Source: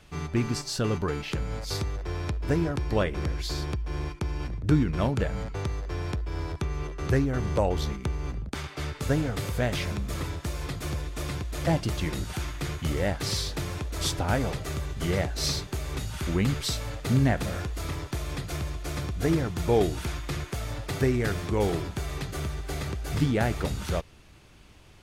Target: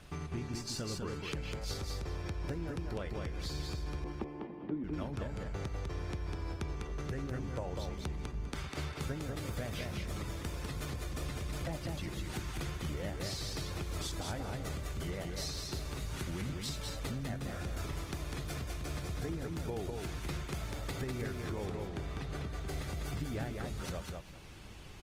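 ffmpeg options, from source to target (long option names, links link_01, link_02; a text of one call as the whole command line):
ffmpeg -i in.wav -filter_complex "[0:a]asettb=1/sr,asplit=3[link_01][link_02][link_03];[link_01]atrim=end=21.664[link_04];[link_02]atrim=start=21.66:end=22.55,asetpts=PTS-STARTPTS,afade=type=in:duration=0.004:curve=qsin,afade=type=out:start_time=0.886:duration=0.004:curve=qsin,aemphasis=mode=reproduction:type=50kf[link_05];[link_03]atrim=start=22.546[link_06];[link_04][link_05]acrossfade=duration=0.004:curve1=hsin:curve2=qsin[link_07];[link_07][link_06]acrossfade=duration=0.004:curve1=qsin:curve2=hsin,acompressor=threshold=-39dB:ratio=6,asettb=1/sr,asplit=3[link_08][link_09][link_10];[link_08]atrim=end=4.044[link_11];[link_09]atrim=start=4.04:end=4.84,asetpts=PTS-STARTPTS,afade=type=in:duration=0.004:curve=qsin,afade=type=out:start_time=0.796:duration=0.004:curve=qsin,highpass=frequency=180:width=0.5412,highpass=frequency=180:width=1.3066,equalizer=frequency=220:width_type=q:width=4:gain=5,equalizer=frequency=330:width_type=q:width=4:gain=8,equalizer=frequency=500:width_type=q:width=4:gain=4,equalizer=frequency=790:width_type=q:width=4:gain=5,equalizer=frequency=1500:width_type=q:width=4:gain=-10,equalizer=frequency=2400:width_type=q:width=4:gain=-7,lowpass=frequency=2600:width=0.5412,lowpass=frequency=2600:width=1.3066[link_12];[link_10]atrim=start=4.836[link_13];[link_11][link_12]acrossfade=duration=0.004:curve1=hsin:curve2=qsin[link_14];[link_14][link_13]acrossfade=duration=0.004:curve1=qsin:curve2=hsin,aecho=1:1:200|400|600:0.668|0.127|0.0241,volume=1dB" -ar 48000 -c:a libopus -b:a 20k out.opus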